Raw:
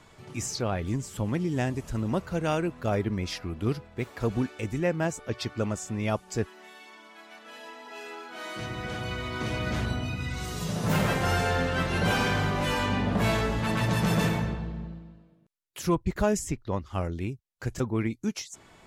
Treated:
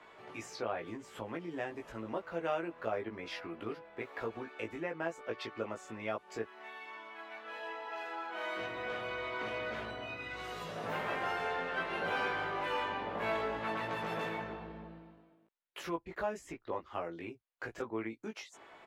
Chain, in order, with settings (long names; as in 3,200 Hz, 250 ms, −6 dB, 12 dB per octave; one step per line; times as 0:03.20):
high-shelf EQ 11,000 Hz +6 dB
downward compressor 2.5 to 1, threshold −34 dBFS, peak gain reduction 10 dB
three-way crossover with the lows and the highs turned down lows −21 dB, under 330 Hz, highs −20 dB, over 3,200 Hz
double-tracking delay 18 ms −3 dB